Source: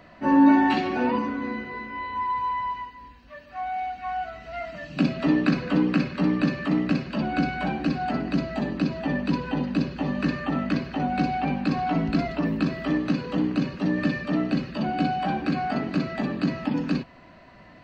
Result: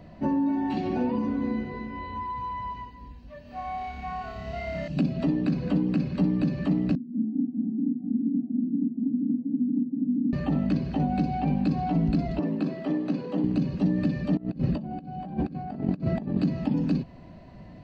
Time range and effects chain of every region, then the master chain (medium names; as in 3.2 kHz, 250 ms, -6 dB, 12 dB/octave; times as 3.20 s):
3.42–4.88 s: peaking EQ 320 Hz -7 dB 0.27 oct + flutter echo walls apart 5 m, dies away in 1.4 s
6.95–10.33 s: Butterworth band-pass 250 Hz, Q 4 + delay 395 ms -3 dB
12.39–13.44 s: high-pass 300 Hz + treble shelf 3.1 kHz -8 dB
14.37–16.38 s: treble shelf 2.1 kHz -9.5 dB + compressor with a negative ratio -33 dBFS, ratio -0.5
whole clip: compression 12:1, threshold -25 dBFS; FFT filter 180 Hz 0 dB, 260 Hz -5 dB, 850 Hz -10 dB, 1.3 kHz -19 dB, 4.5 kHz -12 dB; trim +8.5 dB